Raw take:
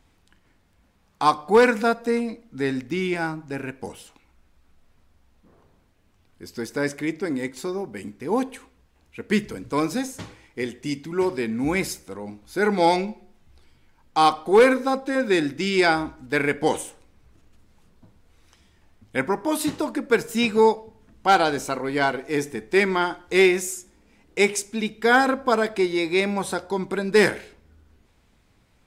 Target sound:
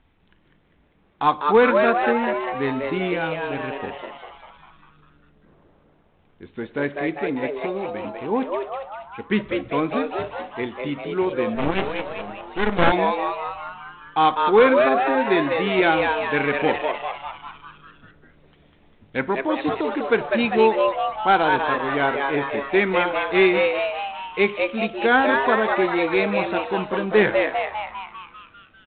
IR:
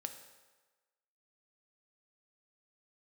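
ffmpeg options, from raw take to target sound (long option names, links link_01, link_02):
-filter_complex "[0:a]asplit=9[link_01][link_02][link_03][link_04][link_05][link_06][link_07][link_08][link_09];[link_02]adelay=199,afreqshift=140,volume=-4dB[link_10];[link_03]adelay=398,afreqshift=280,volume=-8.7dB[link_11];[link_04]adelay=597,afreqshift=420,volume=-13.5dB[link_12];[link_05]adelay=796,afreqshift=560,volume=-18.2dB[link_13];[link_06]adelay=995,afreqshift=700,volume=-22.9dB[link_14];[link_07]adelay=1194,afreqshift=840,volume=-27.7dB[link_15];[link_08]adelay=1393,afreqshift=980,volume=-32.4dB[link_16];[link_09]adelay=1592,afreqshift=1120,volume=-37.1dB[link_17];[link_01][link_10][link_11][link_12][link_13][link_14][link_15][link_16][link_17]amix=inputs=9:normalize=0,asettb=1/sr,asplit=3[link_18][link_19][link_20];[link_18]atrim=end=11.554[link_21];[link_19]atrim=start=11.55:end=12.92,asetpts=PTS-STARTPTS,afade=type=in:duration=0.004:curve=qsin,afade=type=out:start_time=1.366:duration=0.004:curve=qsin,aeval=exprs='0.562*(cos(1*acos(clip(val(0)/0.562,-1,1)))-cos(1*PI/2))+0.0501*(cos(3*acos(clip(val(0)/0.562,-1,1)))-cos(3*PI/2))+0.2*(cos(4*acos(clip(val(0)/0.562,-1,1)))-cos(4*PI/2))+0.00398*(cos(8*acos(clip(val(0)/0.562,-1,1)))-cos(8*PI/2))':channel_layout=same[link_22];[link_20]atrim=start=12.916[link_23];[link_21][link_22]acrossfade=duration=0.004:curve1=hsin:curve2=qsin[link_24];[link_24][link_23]acrossfade=duration=0.004:curve1=qsin:curve2=hsin" -ar 8000 -c:a adpcm_g726 -b:a 32k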